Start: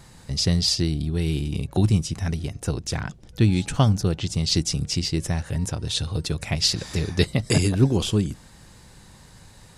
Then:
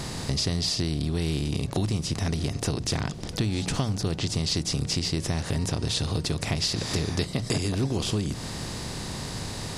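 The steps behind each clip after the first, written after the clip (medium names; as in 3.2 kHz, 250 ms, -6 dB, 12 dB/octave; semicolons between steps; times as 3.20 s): spectral levelling over time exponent 0.6; hum notches 60/120/180 Hz; compression 5:1, threshold -24 dBFS, peak gain reduction 12.5 dB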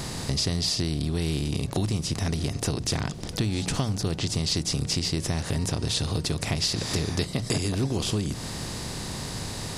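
treble shelf 11 kHz +6.5 dB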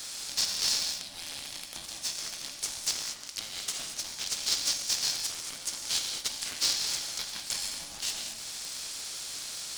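band-pass filter 6.4 kHz, Q 0.92; gated-style reverb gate 250 ms flat, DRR 2.5 dB; polarity switched at an audio rate 430 Hz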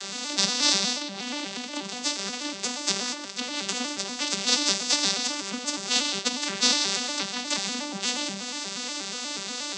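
vocoder on a broken chord major triad, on G3, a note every 120 ms; trim +7 dB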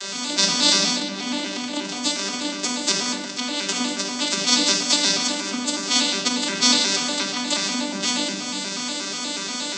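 simulated room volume 3100 m³, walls furnished, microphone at 2.8 m; trim +3 dB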